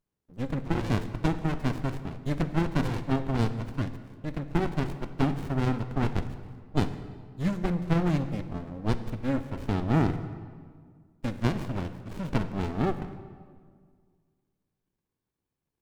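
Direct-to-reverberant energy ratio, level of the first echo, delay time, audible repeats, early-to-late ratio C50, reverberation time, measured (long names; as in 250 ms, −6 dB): 11.0 dB, no echo audible, no echo audible, no echo audible, 11.5 dB, 1.9 s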